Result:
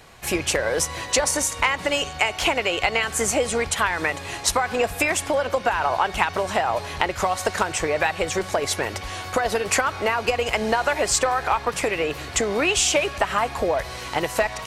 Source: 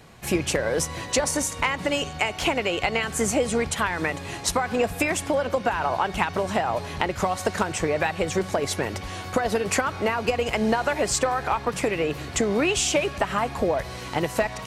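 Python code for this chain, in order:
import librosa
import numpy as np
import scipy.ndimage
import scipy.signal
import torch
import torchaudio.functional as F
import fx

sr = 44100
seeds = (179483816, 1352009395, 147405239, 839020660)

y = fx.peak_eq(x, sr, hz=180.0, db=-9.5, octaves=2.1)
y = y * librosa.db_to_amplitude(4.0)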